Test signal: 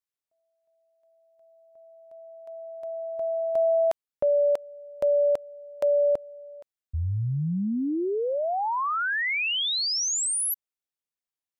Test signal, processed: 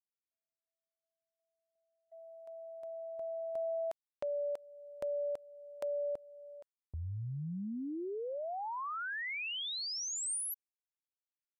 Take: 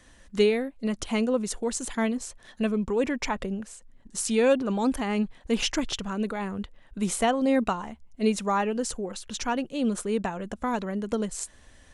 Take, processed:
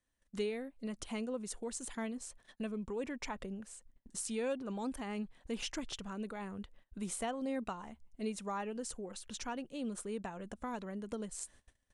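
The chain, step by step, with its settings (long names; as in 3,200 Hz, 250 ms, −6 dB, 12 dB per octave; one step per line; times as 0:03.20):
noise gate −48 dBFS, range −24 dB
parametric band 8,900 Hz +5 dB 0.31 octaves
downward compressor 1.5 to 1, threshold −42 dBFS
level −6.5 dB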